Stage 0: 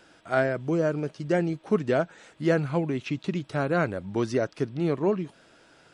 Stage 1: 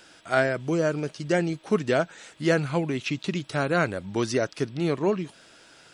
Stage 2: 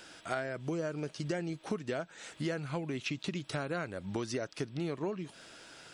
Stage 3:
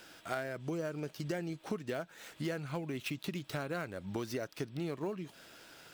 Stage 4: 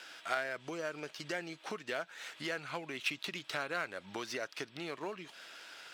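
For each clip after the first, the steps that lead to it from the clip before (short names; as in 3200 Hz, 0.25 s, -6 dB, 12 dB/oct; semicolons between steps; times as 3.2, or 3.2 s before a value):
high shelf 2100 Hz +10 dB
compressor 6:1, threshold -33 dBFS, peak gain reduction 15.5 dB
switching dead time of 0.05 ms; gain -2 dB
band-pass 2500 Hz, Q 0.52; gain +6.5 dB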